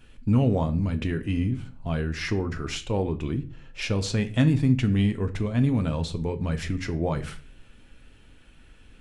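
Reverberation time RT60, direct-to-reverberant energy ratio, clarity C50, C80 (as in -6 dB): 0.40 s, 7.0 dB, 16.5 dB, 20.0 dB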